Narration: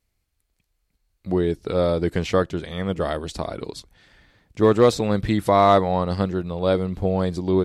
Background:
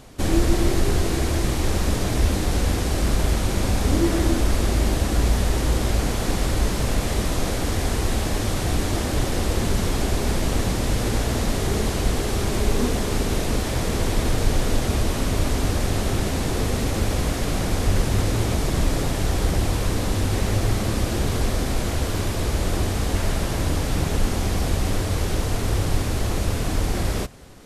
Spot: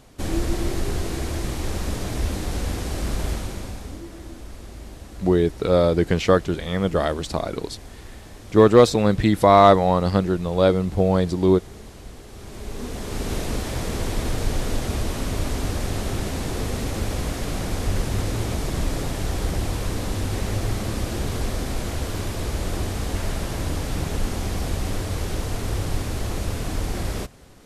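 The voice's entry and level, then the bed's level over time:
3.95 s, +3.0 dB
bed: 3.31 s -5 dB
4.06 s -18.5 dB
12.28 s -18.5 dB
13.31 s -3.5 dB

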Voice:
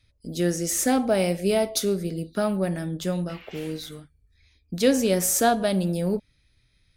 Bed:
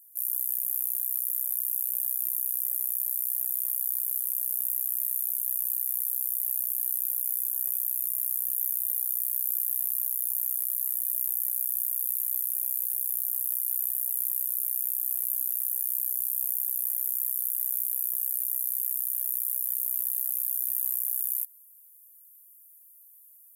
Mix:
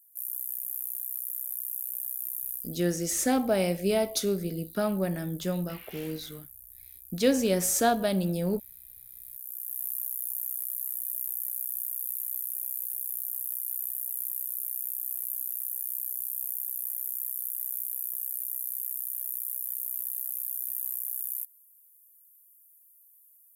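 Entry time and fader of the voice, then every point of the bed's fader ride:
2.40 s, -3.5 dB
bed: 2.54 s -5.5 dB
2.83 s -20.5 dB
9.04 s -20.5 dB
9.86 s -4.5 dB

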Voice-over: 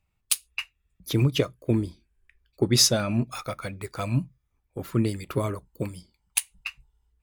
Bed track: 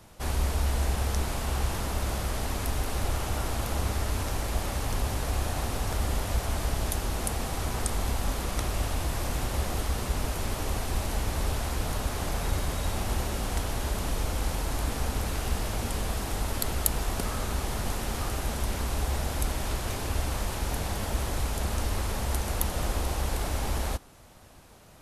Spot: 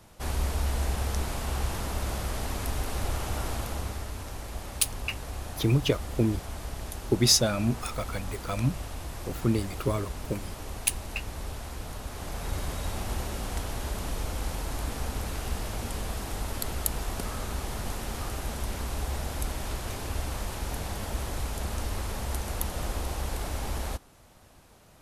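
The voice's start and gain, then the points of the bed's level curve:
4.50 s, -1.5 dB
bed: 3.52 s -1.5 dB
4.13 s -8 dB
12.03 s -8 dB
12.64 s -3 dB

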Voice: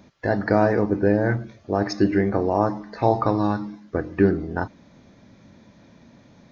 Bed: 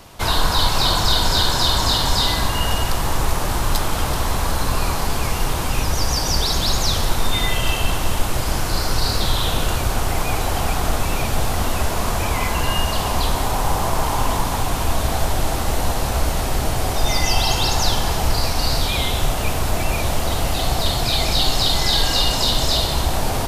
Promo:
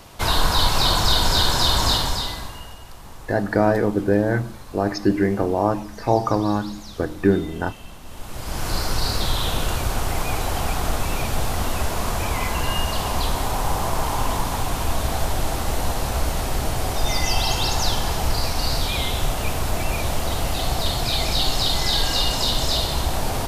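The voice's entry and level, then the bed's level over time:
3.05 s, +0.5 dB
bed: 1.93 s -1 dB
2.77 s -20.5 dB
8.03 s -20.5 dB
8.68 s -3 dB

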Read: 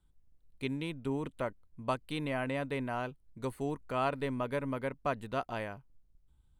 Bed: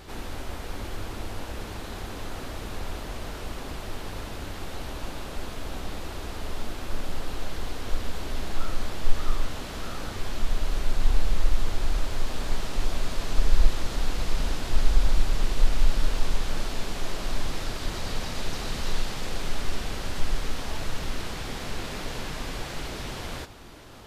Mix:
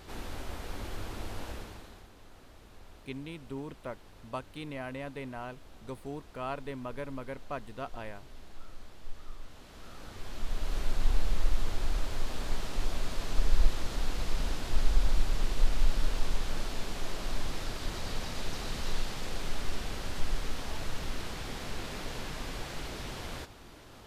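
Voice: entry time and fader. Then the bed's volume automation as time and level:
2.45 s, -5.0 dB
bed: 1.50 s -4.5 dB
2.11 s -19 dB
9.38 s -19 dB
10.78 s -5 dB

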